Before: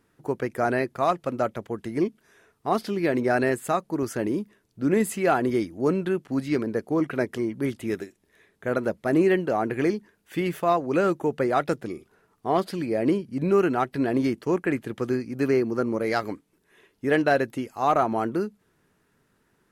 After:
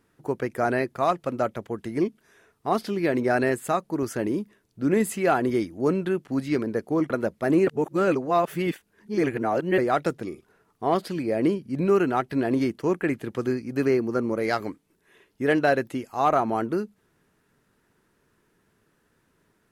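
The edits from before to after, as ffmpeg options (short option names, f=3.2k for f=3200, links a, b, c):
-filter_complex "[0:a]asplit=4[a][b][c][d];[a]atrim=end=7.102[e];[b]atrim=start=8.728:end=9.302[f];[c]atrim=start=9.298:end=11.412,asetpts=PTS-STARTPTS,areverse[g];[d]atrim=start=11.408[h];[e][f]acrossfade=d=0.004:c1=hsin:c2=hsin[i];[i][g]acrossfade=d=0.004:c1=hsin:c2=hsin[j];[j][h]acrossfade=d=0.004:c1=hsin:c2=hsin"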